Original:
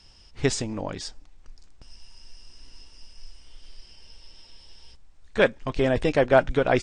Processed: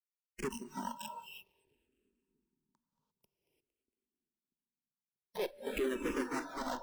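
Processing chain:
hearing-aid frequency compression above 2,200 Hz 4 to 1
parametric band 86 Hz −5.5 dB 2.6 octaves
downward compressor 3 to 1, threshold −42 dBFS, peak gain reduction 21 dB
bit reduction 6 bits
hollow resonant body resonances 230/370/930 Hz, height 13 dB, ringing for 25 ms
tube saturation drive 37 dB, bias 0.35
on a send: echo with a time of its own for lows and highs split 360 Hz, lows 638 ms, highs 229 ms, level −14 dB
on the sum: reverb whose tail is shaped and stops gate 370 ms rising, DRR 2.5 dB
noise reduction from a noise print of the clip's start 19 dB
frequency shifter mixed with the dry sound −0.52 Hz
level +6.5 dB

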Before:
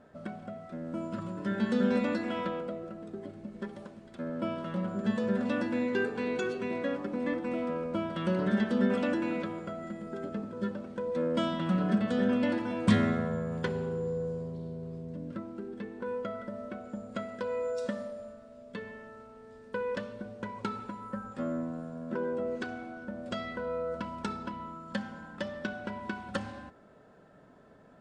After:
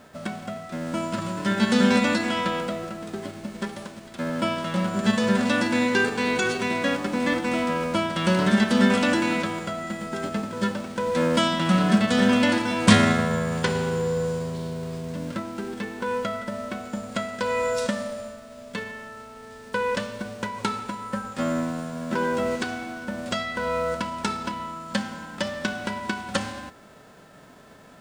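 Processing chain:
spectral envelope flattened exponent 0.6
level +8 dB

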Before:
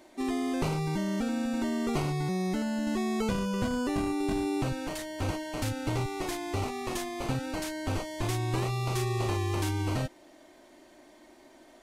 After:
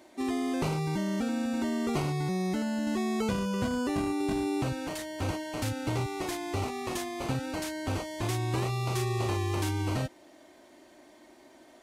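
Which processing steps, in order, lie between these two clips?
high-pass filter 52 Hz

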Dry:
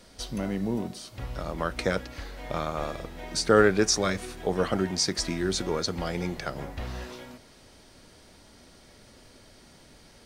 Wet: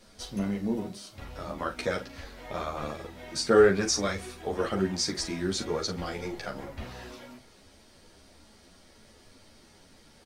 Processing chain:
mains-hum notches 60/120 Hz
double-tracking delay 40 ms −10 dB
string-ensemble chorus

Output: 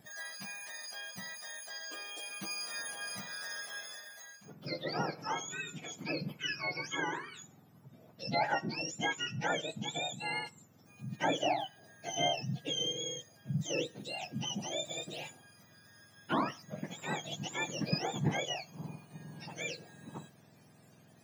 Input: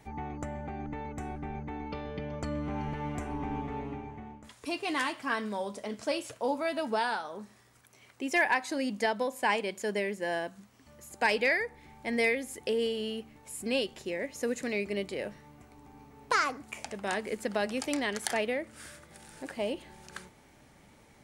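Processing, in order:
frequency axis turned over on the octave scale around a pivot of 1,200 Hz
level −2.5 dB

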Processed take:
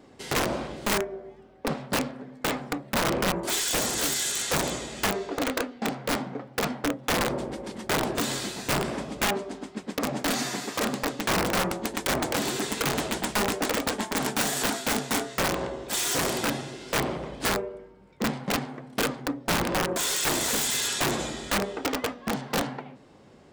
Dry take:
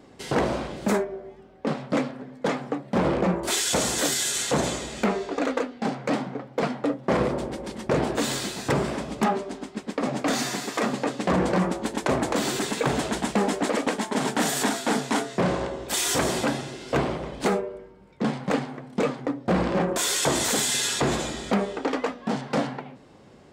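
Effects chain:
wrap-around overflow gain 16.5 dB
mains-hum notches 60/120/180 Hz
level −2 dB

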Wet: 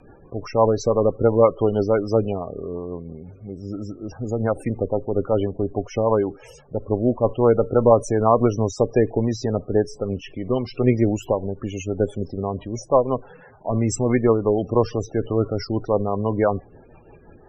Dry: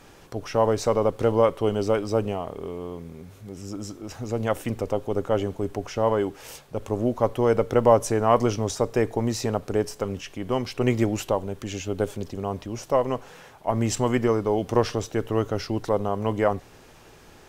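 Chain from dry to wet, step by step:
0:03.47–0:04.29: high-shelf EQ 4,900 Hz −9 dB
spectral peaks only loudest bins 32
rotating-speaker cabinet horn 6 Hz
level +5.5 dB

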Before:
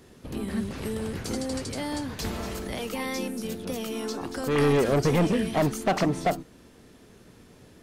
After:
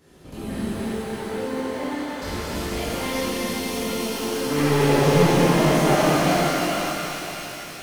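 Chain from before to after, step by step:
0:00.72–0:02.22: three-way crossover with the lows and the highs turned down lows −16 dB, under 250 Hz, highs −21 dB, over 2,600 Hz
delay with a high-pass on its return 272 ms, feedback 75%, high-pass 2,100 Hz, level −3 dB
reverb with rising layers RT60 3.5 s, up +12 semitones, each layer −8 dB, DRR −11.5 dB
level −7 dB

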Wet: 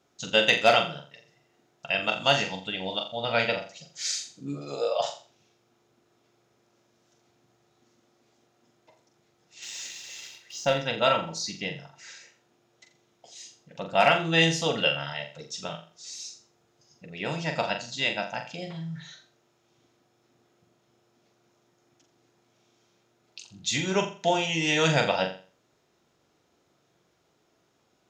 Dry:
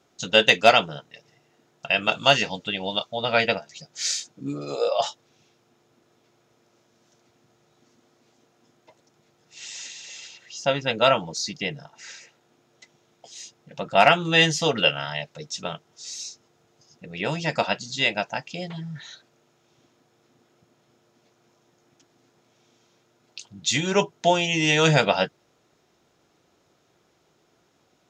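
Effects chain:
0:09.62–0:10.74: leveller curve on the samples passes 1
flutter between parallel walls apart 7.3 metres, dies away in 0.38 s
level −5 dB

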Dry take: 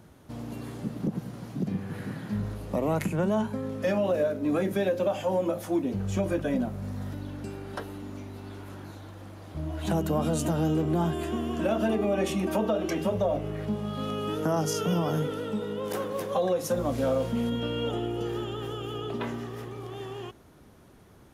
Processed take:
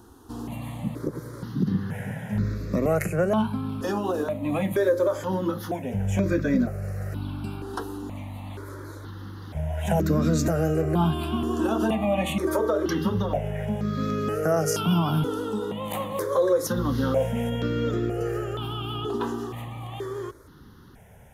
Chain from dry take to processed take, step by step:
step-sequenced phaser 2.1 Hz 590–3,000 Hz
level +7 dB

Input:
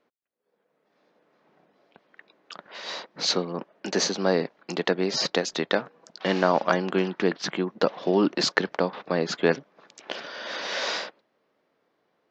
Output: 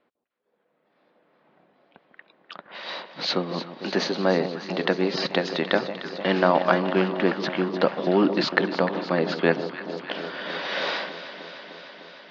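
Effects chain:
low-pass filter 4,100 Hz 24 dB per octave
notch filter 440 Hz, Q 12
on a send: delay that swaps between a low-pass and a high-pass 151 ms, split 1,000 Hz, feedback 87%, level −10.5 dB
on the sum: level +2 dB

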